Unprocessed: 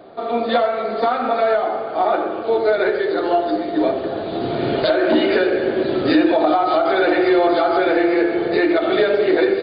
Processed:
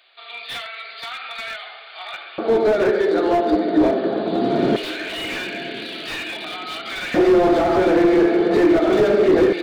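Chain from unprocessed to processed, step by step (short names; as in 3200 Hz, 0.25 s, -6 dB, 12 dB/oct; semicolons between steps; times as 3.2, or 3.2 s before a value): LFO high-pass square 0.21 Hz 200–2600 Hz; diffused feedback echo 1.024 s, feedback 45%, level -14.5 dB; slew limiter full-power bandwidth 120 Hz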